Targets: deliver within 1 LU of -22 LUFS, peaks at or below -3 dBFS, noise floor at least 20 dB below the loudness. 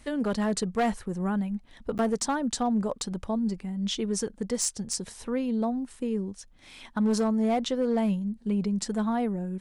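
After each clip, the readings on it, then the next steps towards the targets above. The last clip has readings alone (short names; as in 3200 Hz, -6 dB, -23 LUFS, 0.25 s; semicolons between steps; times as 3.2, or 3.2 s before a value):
clipped 0.9%; flat tops at -19.5 dBFS; dropouts 1; longest dropout 9.7 ms; loudness -29.0 LUFS; peak -19.5 dBFS; loudness target -22.0 LUFS
-> clip repair -19.5 dBFS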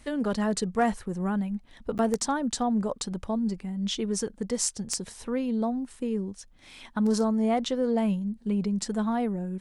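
clipped 0.0%; dropouts 1; longest dropout 9.7 ms
-> interpolate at 1.98, 9.7 ms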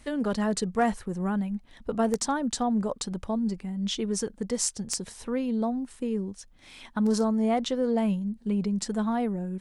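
dropouts 0; loudness -28.5 LUFS; peak -10.5 dBFS; loudness target -22.0 LUFS
-> gain +6.5 dB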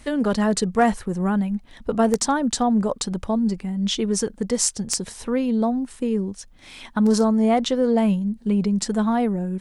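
loudness -22.0 LUFS; peak -4.0 dBFS; noise floor -48 dBFS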